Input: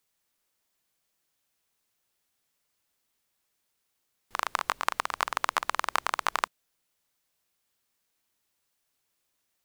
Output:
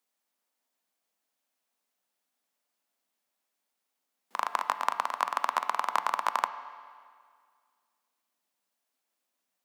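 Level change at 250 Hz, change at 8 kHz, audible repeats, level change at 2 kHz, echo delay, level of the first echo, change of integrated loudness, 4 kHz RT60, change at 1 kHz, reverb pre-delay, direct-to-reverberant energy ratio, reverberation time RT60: -3.5 dB, -6.0 dB, no echo, -4.0 dB, no echo, no echo, 0.0 dB, 1.8 s, +1.5 dB, 7 ms, 10.0 dB, 2.0 s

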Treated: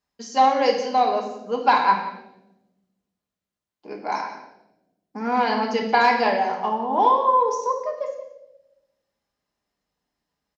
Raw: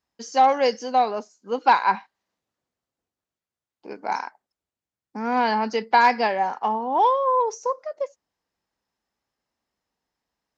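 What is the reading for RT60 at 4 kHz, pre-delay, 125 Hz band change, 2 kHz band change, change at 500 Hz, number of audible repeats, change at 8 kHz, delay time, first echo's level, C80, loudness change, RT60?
0.80 s, 3 ms, no reading, +0.5 dB, +1.0 dB, 1, no reading, 175 ms, -15.0 dB, 8.0 dB, +1.0 dB, 0.90 s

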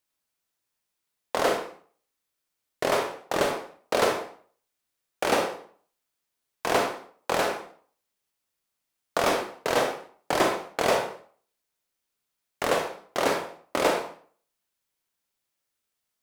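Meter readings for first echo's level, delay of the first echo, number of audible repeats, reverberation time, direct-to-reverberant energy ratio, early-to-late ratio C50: no echo, no echo, no echo, 0.45 s, 3.5 dB, 6.0 dB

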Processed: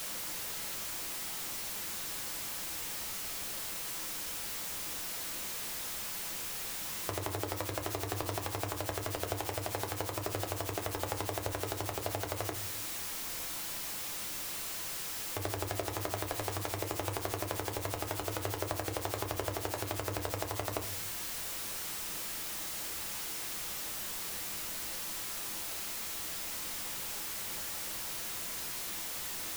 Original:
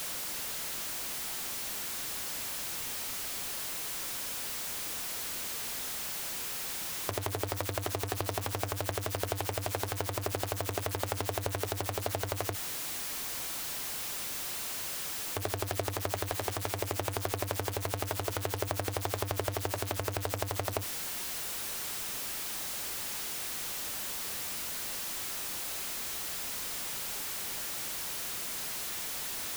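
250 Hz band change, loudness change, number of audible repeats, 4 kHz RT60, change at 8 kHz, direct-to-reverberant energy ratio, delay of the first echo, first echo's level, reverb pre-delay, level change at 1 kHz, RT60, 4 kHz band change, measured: -0.5 dB, -2.0 dB, no echo, 0.25 s, -2.0 dB, 5.0 dB, no echo, no echo, 6 ms, -1.5 dB, 0.55 s, -2.0 dB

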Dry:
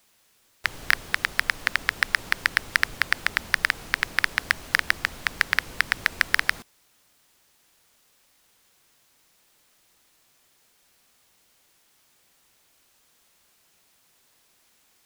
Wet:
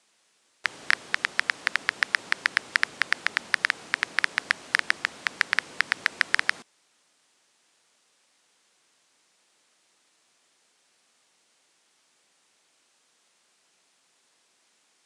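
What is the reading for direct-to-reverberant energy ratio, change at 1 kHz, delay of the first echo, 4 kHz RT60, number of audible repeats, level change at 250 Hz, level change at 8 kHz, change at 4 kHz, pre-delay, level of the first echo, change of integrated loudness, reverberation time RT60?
no reverb, -1.5 dB, no echo, no reverb, no echo, -4.0 dB, -3.0 dB, -1.5 dB, no reverb, no echo, -1.5 dB, no reverb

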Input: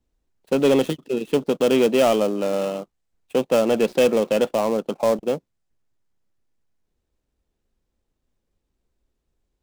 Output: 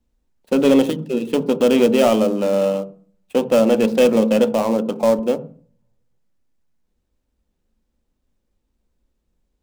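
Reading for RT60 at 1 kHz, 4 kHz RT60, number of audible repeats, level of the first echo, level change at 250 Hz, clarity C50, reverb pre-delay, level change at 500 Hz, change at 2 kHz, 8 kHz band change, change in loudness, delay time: 0.45 s, 0.40 s, no echo, no echo, +6.0 dB, 17.5 dB, 3 ms, +3.0 dB, +1.5 dB, +1.5 dB, +3.5 dB, no echo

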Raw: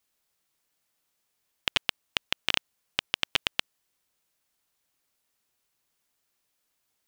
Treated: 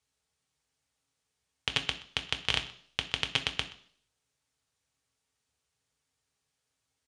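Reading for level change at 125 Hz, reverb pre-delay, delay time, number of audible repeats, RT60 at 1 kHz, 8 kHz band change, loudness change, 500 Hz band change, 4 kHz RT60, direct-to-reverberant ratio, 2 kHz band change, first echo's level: +6.0 dB, 3 ms, 126 ms, 1, 0.55 s, -2.0 dB, -2.5 dB, -1.0 dB, 0.65 s, 5.0 dB, -2.5 dB, -21.0 dB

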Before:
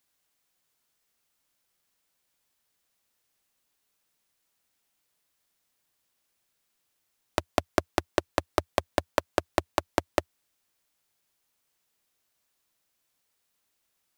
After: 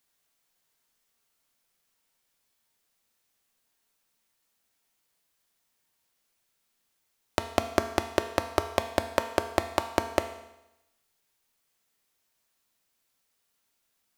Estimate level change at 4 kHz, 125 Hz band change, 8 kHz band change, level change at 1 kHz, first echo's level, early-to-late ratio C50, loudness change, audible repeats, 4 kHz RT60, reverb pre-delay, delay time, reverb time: +1.0 dB, 0.0 dB, +1.0 dB, +1.0 dB, no echo, 10.0 dB, +0.5 dB, no echo, 0.90 s, 4 ms, no echo, 0.90 s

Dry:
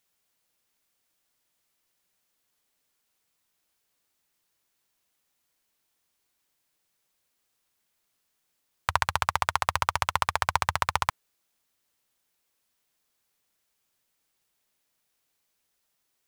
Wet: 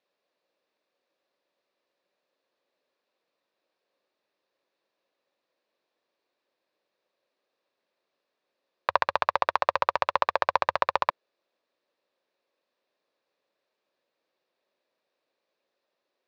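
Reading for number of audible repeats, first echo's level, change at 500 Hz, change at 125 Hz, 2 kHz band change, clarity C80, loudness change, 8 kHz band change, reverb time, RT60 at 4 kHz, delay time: no echo, no echo, +9.0 dB, -14.5 dB, -1.5 dB, no reverb, +1.0 dB, under -15 dB, no reverb, no reverb, no echo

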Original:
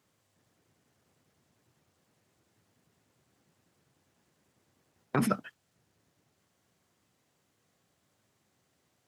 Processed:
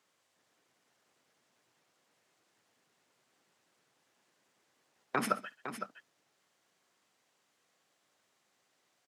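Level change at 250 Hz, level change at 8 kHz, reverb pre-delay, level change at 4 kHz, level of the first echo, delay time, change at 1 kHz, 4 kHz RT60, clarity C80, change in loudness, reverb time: -9.0 dB, -1.5 dB, no reverb, +1.5 dB, -19.0 dB, 56 ms, +1.0 dB, no reverb, no reverb, -5.5 dB, no reverb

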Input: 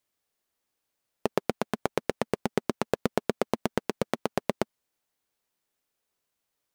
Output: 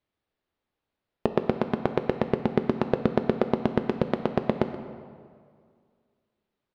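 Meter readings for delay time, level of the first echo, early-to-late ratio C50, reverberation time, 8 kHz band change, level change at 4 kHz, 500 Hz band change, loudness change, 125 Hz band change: 128 ms, -16.5 dB, 8.5 dB, 2.1 s, under -15 dB, -3.5 dB, +3.5 dB, +4.0 dB, +6.5 dB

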